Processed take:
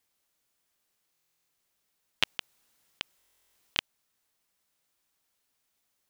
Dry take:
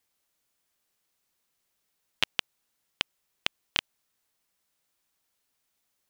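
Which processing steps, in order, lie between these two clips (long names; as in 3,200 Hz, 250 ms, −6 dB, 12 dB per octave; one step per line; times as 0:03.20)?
0:02.25–0:03.78: compressor whose output falls as the input rises −34 dBFS, ratio −1
buffer that repeats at 0:01.12/0:03.18, samples 1,024, times 15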